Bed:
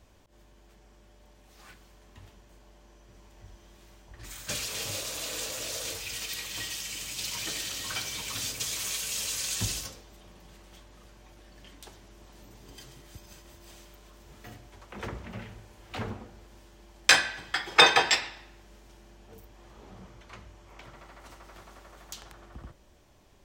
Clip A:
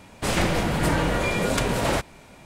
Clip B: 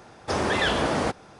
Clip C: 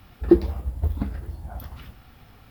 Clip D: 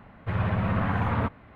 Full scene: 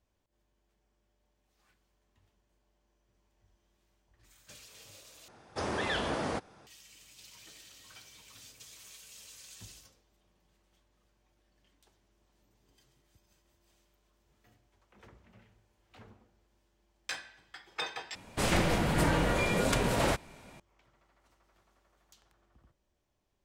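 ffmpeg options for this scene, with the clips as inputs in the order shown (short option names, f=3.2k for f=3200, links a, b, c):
-filter_complex "[0:a]volume=-19.5dB,asplit=3[a][b][c];[a]atrim=end=5.284[d];[2:a]atrim=end=1.39,asetpts=PTS-STARTPTS,volume=-9dB[e];[b]atrim=start=6.666:end=18.154[f];[1:a]atrim=end=2.45,asetpts=PTS-STARTPTS,volume=-5dB[g];[c]atrim=start=20.596[h];[d][e]acrossfade=d=0.004:c1=hsin:c2=hsin[i];[i][f]acrossfade=d=0.004:c1=hsin:c2=hsin[j];[j][g]acrossfade=d=0.004:c1=hsin:c2=hsin[k];[k][h]acrossfade=d=0.004:c1=hsin:c2=hsin"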